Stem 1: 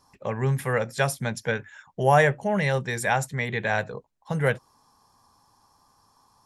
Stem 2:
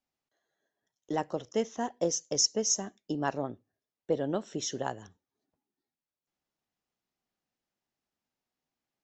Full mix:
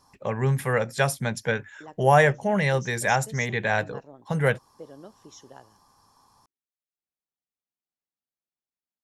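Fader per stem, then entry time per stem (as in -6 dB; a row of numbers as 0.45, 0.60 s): +1.0, -14.0 dB; 0.00, 0.70 s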